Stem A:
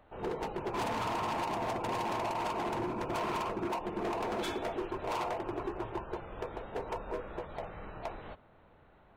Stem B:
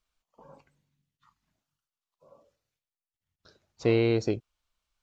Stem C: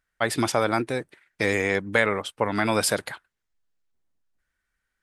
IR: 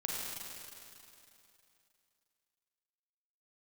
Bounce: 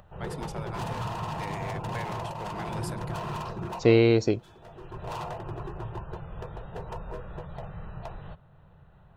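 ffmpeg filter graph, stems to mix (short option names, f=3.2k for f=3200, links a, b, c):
-filter_complex "[0:a]lowshelf=f=200:t=q:w=3:g=8,bandreject=f=2.2k:w=5.5,acompressor=mode=upward:threshold=-49dB:ratio=2.5,volume=-1dB[a];[1:a]dynaudnorm=f=200:g=9:m=15dB,volume=-5.5dB,asplit=2[b][c];[2:a]acompressor=threshold=-35dB:ratio=1.5,volume=-12.5dB[d];[c]apad=whole_len=404255[e];[a][e]sidechaincompress=threshold=-43dB:ratio=5:attack=5.6:release=438[f];[f][b][d]amix=inputs=3:normalize=0"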